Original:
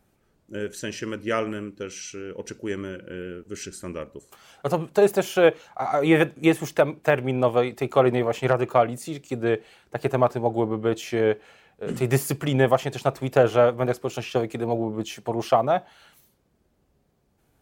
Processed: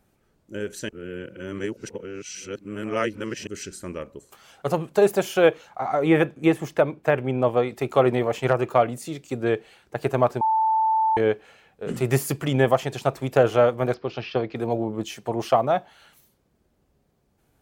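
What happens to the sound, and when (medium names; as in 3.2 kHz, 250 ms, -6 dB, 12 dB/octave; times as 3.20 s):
0.89–3.47 s: reverse
5.79–7.69 s: treble shelf 3.1 kHz -8 dB
10.41–11.17 s: bleep 883 Hz -17.5 dBFS
13.94–14.56 s: elliptic low-pass 4.9 kHz, stop band 60 dB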